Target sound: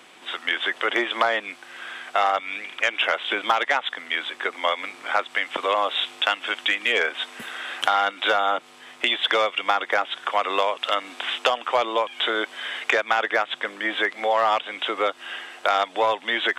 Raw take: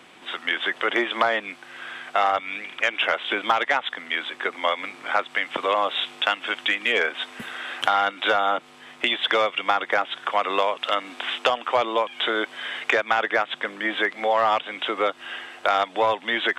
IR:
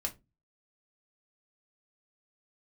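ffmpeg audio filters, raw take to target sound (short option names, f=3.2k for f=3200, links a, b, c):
-af "bass=f=250:g=-7,treble=f=4k:g=4"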